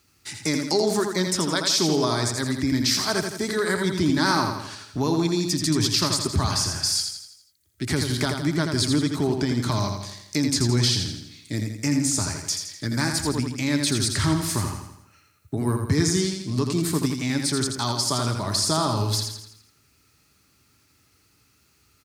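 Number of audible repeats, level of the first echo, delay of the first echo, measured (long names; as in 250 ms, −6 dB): 5, −5.5 dB, 83 ms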